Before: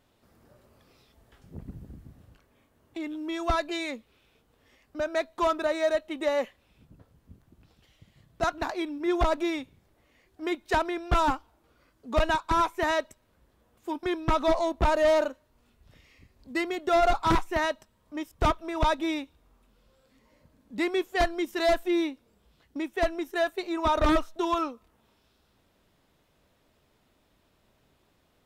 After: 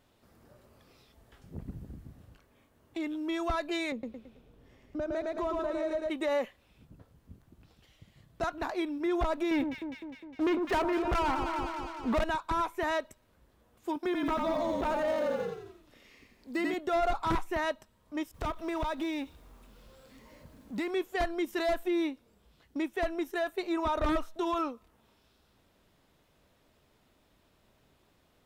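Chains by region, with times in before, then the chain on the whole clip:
3.92–6.10 s: tilt shelf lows +7 dB, about 770 Hz + feedback delay 110 ms, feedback 41%, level -3 dB + compression 2.5:1, threshold -33 dBFS
9.51–12.24 s: low-pass 2.6 kHz + waveshaping leveller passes 3 + echo whose repeats swap between lows and highs 102 ms, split 1.2 kHz, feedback 77%, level -9 dB
13.96–16.74 s: block-companded coder 7-bit + resonant low shelf 200 Hz -10 dB, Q 1.5 + frequency-shifting echo 88 ms, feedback 51%, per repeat -40 Hz, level -4 dB
18.34–20.91 s: companding laws mixed up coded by mu + compression 12:1, threshold -29 dBFS
whole clip: dynamic bell 5.5 kHz, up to -4 dB, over -46 dBFS, Q 0.78; peak limiter -23.5 dBFS

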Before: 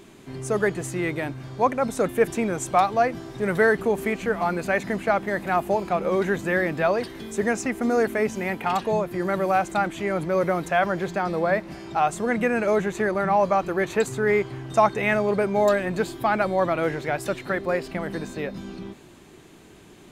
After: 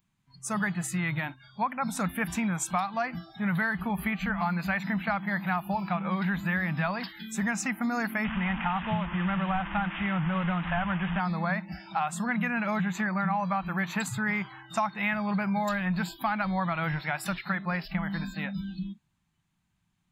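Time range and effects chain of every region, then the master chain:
8.24–11.20 s: one-bit delta coder 16 kbps, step -26.5 dBFS + band-stop 2.3 kHz, Q 30
whole clip: spectral noise reduction 28 dB; FFT filter 180 Hz 0 dB, 420 Hz -29 dB, 870 Hz -6 dB; compression 5:1, threshold -32 dBFS; trim +7 dB

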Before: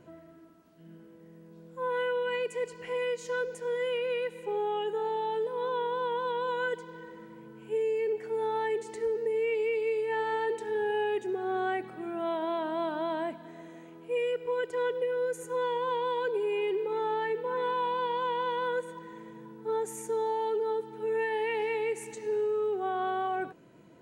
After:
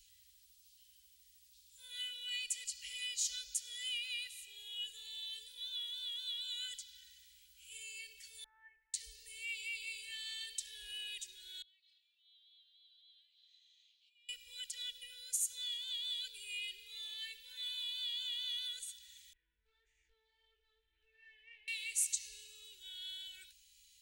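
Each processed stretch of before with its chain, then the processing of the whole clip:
8.44–8.94 s: steep low-pass 1.7 kHz 48 dB/octave + resonant low shelf 600 Hz -11 dB, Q 3
11.62–14.29 s: compression 8:1, threshold -45 dBFS + band-pass filter 3.9 kHz, Q 2.9 + distance through air 130 m
19.33–21.68 s: low-pass 1.8 kHz 24 dB/octave + compression 3:1, threshold -33 dBFS + chorus 1.7 Hz, delay 20 ms, depth 2.6 ms
whole clip: inverse Chebyshev band-stop 140–1200 Hz, stop band 60 dB; bass shelf 99 Hz -6 dB; trim +13 dB

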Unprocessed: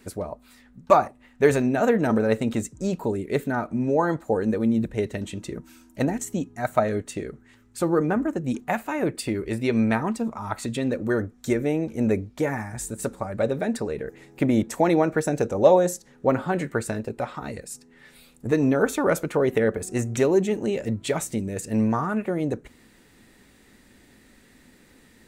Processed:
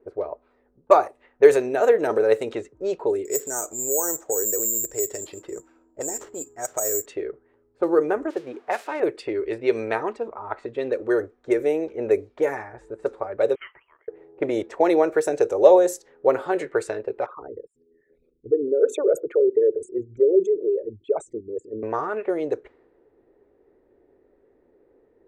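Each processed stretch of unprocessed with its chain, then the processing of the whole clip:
3.25–7.06 s: low-pass 2 kHz 6 dB/octave + compression 2.5:1, threshold -29 dBFS + careless resampling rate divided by 6×, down none, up zero stuff
8.30–9.00 s: zero-crossing glitches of -26 dBFS + high-pass 240 Hz 6 dB/octave
13.55–14.08 s: Bessel high-pass 1.5 kHz, order 8 + frequency inversion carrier 3.7 kHz
17.26–21.83 s: resonances exaggerated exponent 3 + harmonic tremolo 7.3 Hz, depth 50%, crossover 430 Hz
whole clip: resonant low shelf 290 Hz -11 dB, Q 3; level-controlled noise filter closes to 570 Hz, open at -17 dBFS; trim -1 dB

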